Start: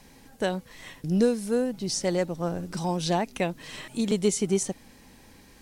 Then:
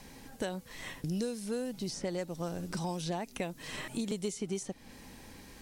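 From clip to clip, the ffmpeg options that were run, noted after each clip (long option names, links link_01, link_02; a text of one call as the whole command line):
ffmpeg -i in.wav -filter_complex "[0:a]acrossover=split=2600|5400[link_01][link_02][link_03];[link_01]acompressor=threshold=-36dB:ratio=4[link_04];[link_02]acompressor=threshold=-53dB:ratio=4[link_05];[link_03]acompressor=threshold=-50dB:ratio=4[link_06];[link_04][link_05][link_06]amix=inputs=3:normalize=0,volume=1.5dB" out.wav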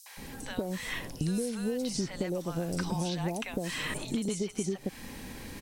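ffmpeg -i in.wav -filter_complex "[0:a]acompressor=threshold=-36dB:ratio=6,acrossover=split=780|5600[link_01][link_02][link_03];[link_02]adelay=60[link_04];[link_01]adelay=170[link_05];[link_05][link_04][link_03]amix=inputs=3:normalize=0,volume=8.5dB" out.wav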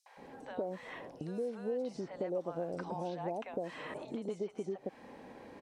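ffmpeg -i in.wav -af "bandpass=frequency=620:width_type=q:width=1.4:csg=0,volume=1dB" out.wav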